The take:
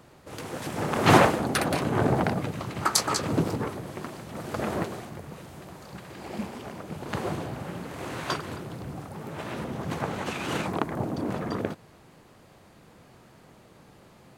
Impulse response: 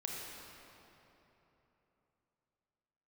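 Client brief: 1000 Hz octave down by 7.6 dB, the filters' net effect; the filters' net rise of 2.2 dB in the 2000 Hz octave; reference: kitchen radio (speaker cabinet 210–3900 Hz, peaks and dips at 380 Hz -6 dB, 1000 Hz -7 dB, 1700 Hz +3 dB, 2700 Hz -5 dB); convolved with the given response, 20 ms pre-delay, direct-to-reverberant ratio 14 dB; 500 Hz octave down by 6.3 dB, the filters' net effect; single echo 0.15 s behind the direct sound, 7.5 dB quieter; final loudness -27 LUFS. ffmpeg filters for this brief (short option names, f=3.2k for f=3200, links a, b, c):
-filter_complex "[0:a]equalizer=f=500:t=o:g=-3,equalizer=f=1k:t=o:g=-8,equalizer=f=2k:t=o:g=5,aecho=1:1:150:0.422,asplit=2[a][b];[1:a]atrim=start_sample=2205,adelay=20[c];[b][c]afir=irnorm=-1:irlink=0,volume=-15dB[d];[a][d]amix=inputs=2:normalize=0,highpass=210,equalizer=f=380:t=q:w=4:g=-6,equalizer=f=1k:t=q:w=4:g=-7,equalizer=f=1.7k:t=q:w=4:g=3,equalizer=f=2.7k:t=q:w=4:g=-5,lowpass=f=3.9k:w=0.5412,lowpass=f=3.9k:w=1.3066,volume=5dB"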